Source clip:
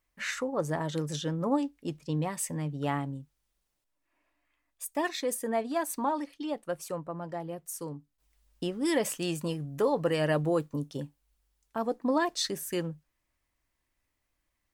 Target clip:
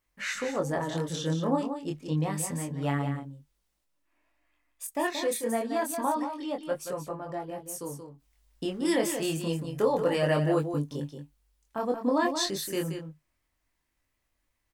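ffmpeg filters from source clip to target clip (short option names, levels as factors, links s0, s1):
-af "flanger=delay=20:depth=6:speed=0.28,aecho=1:1:178:0.398,volume=1.58"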